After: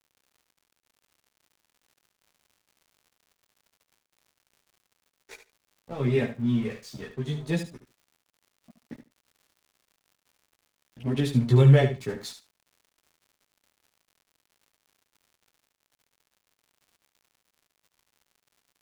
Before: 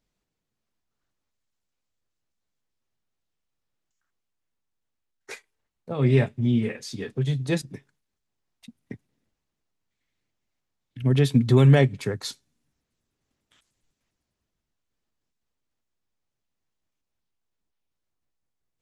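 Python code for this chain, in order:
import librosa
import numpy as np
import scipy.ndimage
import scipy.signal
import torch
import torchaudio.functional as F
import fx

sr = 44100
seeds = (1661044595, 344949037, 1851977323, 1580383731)

p1 = np.sign(x) * np.maximum(np.abs(x) - 10.0 ** (-41.5 / 20.0), 0.0)
p2 = fx.chorus_voices(p1, sr, voices=4, hz=0.42, base_ms=15, depth_ms=2.5, mix_pct=50)
p3 = fx.dmg_crackle(p2, sr, seeds[0], per_s=110.0, level_db=-50.0)
y = p3 + fx.echo_feedback(p3, sr, ms=73, feedback_pct=16, wet_db=-10, dry=0)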